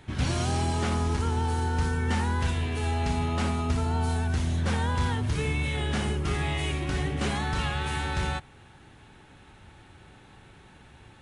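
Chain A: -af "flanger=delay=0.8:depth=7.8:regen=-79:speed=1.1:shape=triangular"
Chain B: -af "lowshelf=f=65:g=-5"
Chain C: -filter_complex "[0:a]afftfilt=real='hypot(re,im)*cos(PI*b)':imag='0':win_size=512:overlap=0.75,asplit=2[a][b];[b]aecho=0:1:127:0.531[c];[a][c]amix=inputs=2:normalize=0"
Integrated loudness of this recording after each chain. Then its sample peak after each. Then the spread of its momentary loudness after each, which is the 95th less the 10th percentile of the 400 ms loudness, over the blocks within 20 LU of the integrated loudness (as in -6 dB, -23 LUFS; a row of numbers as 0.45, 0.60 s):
-32.5, -29.0, -34.5 LUFS; -20.5, -17.0, -15.5 dBFS; 2, 2, 3 LU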